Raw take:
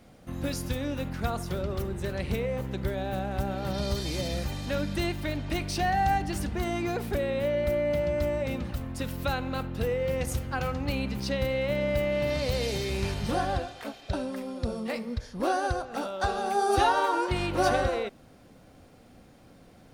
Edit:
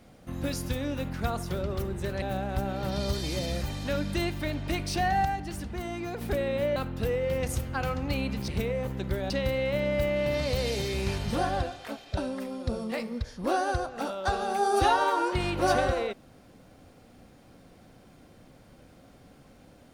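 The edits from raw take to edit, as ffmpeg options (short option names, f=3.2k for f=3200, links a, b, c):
-filter_complex "[0:a]asplit=7[a][b][c][d][e][f][g];[a]atrim=end=2.222[h];[b]atrim=start=3.038:end=6.072[i];[c]atrim=start=6.068:end=7.032,asetpts=PTS-STARTPTS,volume=-5dB[j];[d]atrim=start=7.028:end=7.582[k];[e]atrim=start=9.538:end=11.262[l];[f]atrim=start=2.218:end=3.042[m];[g]atrim=start=11.258[n];[h][i]acrossfade=d=0.004:c1=hsin:c2=hsin[o];[o][j]acrossfade=d=0.004:c1=hsin:c2=hsin[p];[p][k]acrossfade=d=0.004:c1=hsin:c2=hsin[q];[q][l]acrossfade=d=0.004:c1=hsin:c2=hsin[r];[r][m]acrossfade=d=0.004:c1=hsin:c2=hsin[s];[s][n]acrossfade=d=0.004:c1=hsin:c2=hsin"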